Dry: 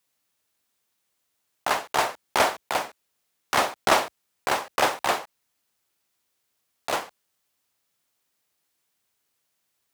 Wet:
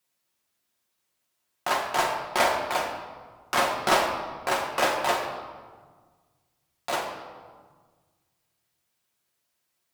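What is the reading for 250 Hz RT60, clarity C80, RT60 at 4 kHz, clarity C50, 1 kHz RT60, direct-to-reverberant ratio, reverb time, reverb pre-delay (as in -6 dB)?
2.1 s, 7.0 dB, 1.0 s, 5.5 dB, 1.5 s, -0.5 dB, 1.6 s, 5 ms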